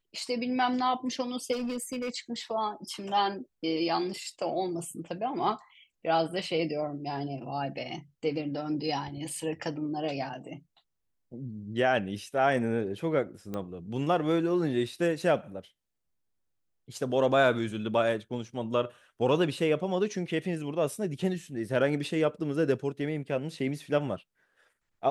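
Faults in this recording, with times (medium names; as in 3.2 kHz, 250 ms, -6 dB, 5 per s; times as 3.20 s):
1.52–2.10 s: clipped -29 dBFS
13.54 s: pop -22 dBFS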